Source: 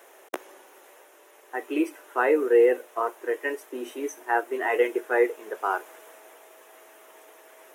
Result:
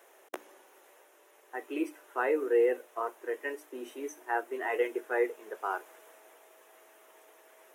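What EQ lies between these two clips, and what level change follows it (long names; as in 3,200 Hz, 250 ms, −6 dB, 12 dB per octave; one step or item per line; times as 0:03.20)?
mains-hum notches 60/120/180/240/300 Hz
−7.0 dB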